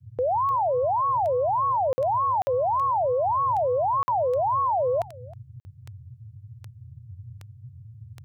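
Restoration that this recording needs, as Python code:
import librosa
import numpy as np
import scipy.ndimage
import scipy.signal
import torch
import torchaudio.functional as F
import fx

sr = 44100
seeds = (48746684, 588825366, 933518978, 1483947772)

y = fx.fix_declick_ar(x, sr, threshold=10.0)
y = fx.fix_interpolate(y, sr, at_s=(1.93, 2.42, 4.03, 5.6), length_ms=50.0)
y = fx.noise_reduce(y, sr, print_start_s=5.71, print_end_s=6.21, reduce_db=26.0)
y = fx.fix_echo_inverse(y, sr, delay_ms=317, level_db=-21.5)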